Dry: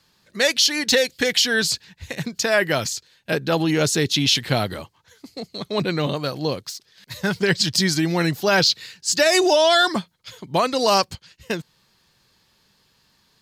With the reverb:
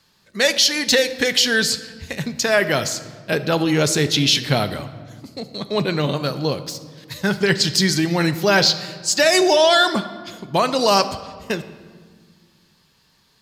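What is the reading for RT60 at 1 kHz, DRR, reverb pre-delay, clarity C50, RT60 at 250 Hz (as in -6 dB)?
1.5 s, 10.0 dB, 5 ms, 13.0 dB, 2.4 s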